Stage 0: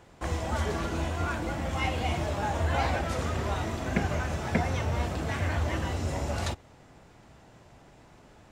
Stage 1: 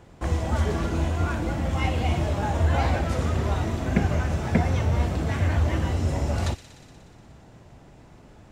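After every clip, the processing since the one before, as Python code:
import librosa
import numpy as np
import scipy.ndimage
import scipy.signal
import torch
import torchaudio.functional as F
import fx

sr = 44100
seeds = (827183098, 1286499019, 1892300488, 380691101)

y = fx.low_shelf(x, sr, hz=420.0, db=7.5)
y = fx.echo_wet_highpass(y, sr, ms=60, feedback_pct=82, hz=2200.0, wet_db=-13.0)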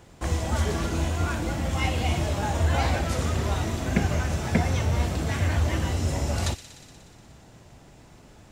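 y = fx.high_shelf(x, sr, hz=3100.0, db=9.5)
y = y * librosa.db_to_amplitude(-1.5)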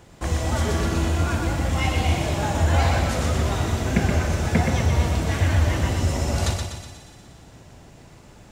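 y = fx.echo_feedback(x, sr, ms=124, feedback_pct=49, wet_db=-5.0)
y = y * librosa.db_to_amplitude(2.0)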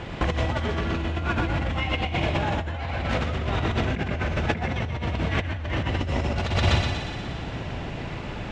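y = fx.over_compress(x, sr, threshold_db=-31.0, ratio=-1.0)
y = fx.lowpass_res(y, sr, hz=2900.0, q=1.5)
y = y * librosa.db_to_amplitude(5.0)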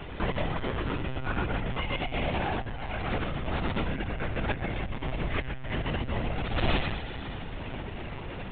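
y = fx.lpc_monotone(x, sr, seeds[0], pitch_hz=130.0, order=16)
y = y * librosa.db_to_amplitude(-4.5)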